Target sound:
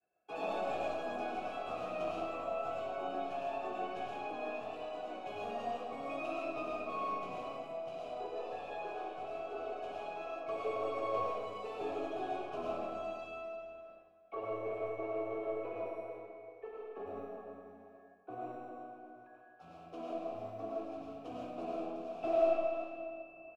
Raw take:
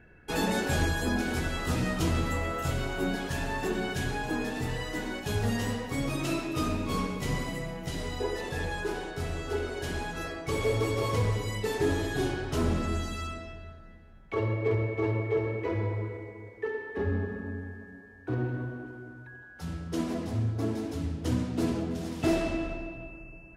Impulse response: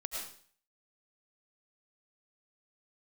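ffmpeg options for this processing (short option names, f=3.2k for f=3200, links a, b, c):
-filter_complex "[0:a]agate=range=-33dB:threshold=-45dB:ratio=3:detection=peak,equalizer=f=290:t=o:w=2.5:g=4.5,areverse,acompressor=mode=upward:threshold=-36dB:ratio=2.5,areverse,asplit=3[a][b][c];[a]bandpass=f=730:t=q:w=8,volume=0dB[d];[b]bandpass=f=1.09k:t=q:w=8,volume=-6dB[e];[c]bandpass=f=2.44k:t=q:w=8,volume=-9dB[f];[d][e][f]amix=inputs=3:normalize=0,aecho=1:1:385:0.211,acrossover=split=120|1200[g][h][i];[g]acrusher=samples=23:mix=1:aa=0.000001[j];[j][h][i]amix=inputs=3:normalize=0,aeval=exprs='0.0631*(cos(1*acos(clip(val(0)/0.0631,-1,1)))-cos(1*PI/2))+0.00178*(cos(4*acos(clip(val(0)/0.0631,-1,1)))-cos(4*PI/2))':c=same[k];[1:a]atrim=start_sample=2205[l];[k][l]afir=irnorm=-1:irlink=0,volume=2dB"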